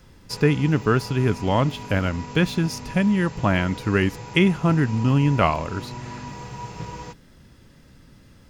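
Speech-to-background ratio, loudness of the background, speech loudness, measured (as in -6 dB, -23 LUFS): 15.0 dB, -37.0 LUFS, -22.0 LUFS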